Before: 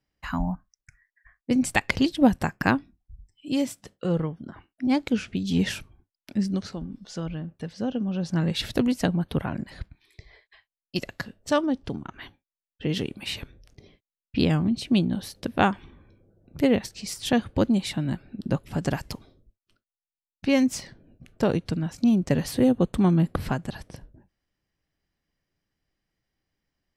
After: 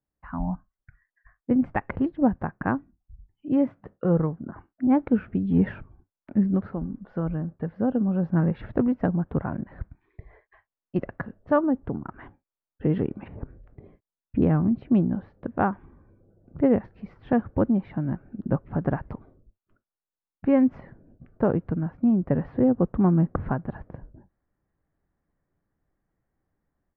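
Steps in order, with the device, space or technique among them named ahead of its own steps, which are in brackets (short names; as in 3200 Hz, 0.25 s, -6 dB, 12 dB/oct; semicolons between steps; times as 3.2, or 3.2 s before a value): 13.21–14.42 treble ducked by the level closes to 660 Hz, closed at -30 dBFS; action camera in a waterproof case (LPF 1500 Hz 24 dB/oct; AGC gain up to 12 dB; gain -7.5 dB; AAC 96 kbps 32000 Hz)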